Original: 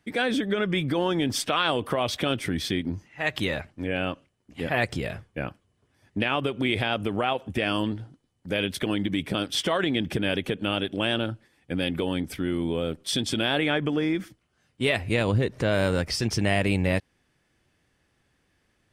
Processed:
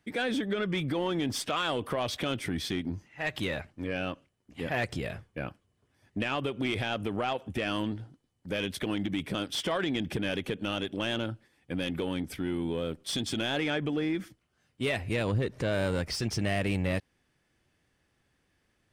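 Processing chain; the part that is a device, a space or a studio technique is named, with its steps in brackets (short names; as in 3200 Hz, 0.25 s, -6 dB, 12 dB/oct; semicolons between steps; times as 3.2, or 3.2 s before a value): saturation between pre-emphasis and de-emphasis (high shelf 4500 Hz +10.5 dB; soft clip -17 dBFS, distortion -16 dB; high shelf 4500 Hz -10.5 dB); gain -3.5 dB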